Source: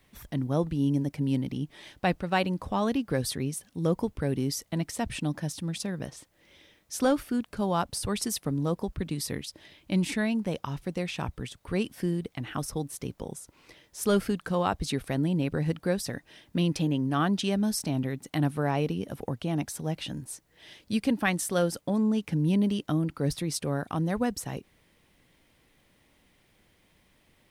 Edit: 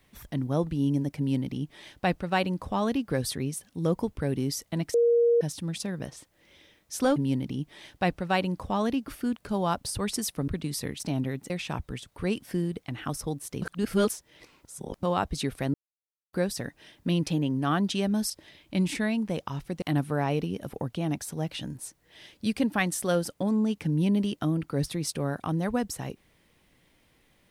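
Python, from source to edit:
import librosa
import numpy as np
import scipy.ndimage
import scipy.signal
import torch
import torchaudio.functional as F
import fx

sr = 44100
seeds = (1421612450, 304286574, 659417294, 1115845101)

y = fx.edit(x, sr, fx.duplicate(start_s=1.18, length_s=1.92, to_s=7.16),
    fx.bleep(start_s=4.94, length_s=0.47, hz=471.0, db=-18.0),
    fx.cut(start_s=8.56, length_s=0.39),
    fx.swap(start_s=9.47, length_s=1.52, other_s=17.79, other_length_s=0.5),
    fx.reverse_span(start_s=13.11, length_s=1.41),
    fx.silence(start_s=15.23, length_s=0.59), tone=tone)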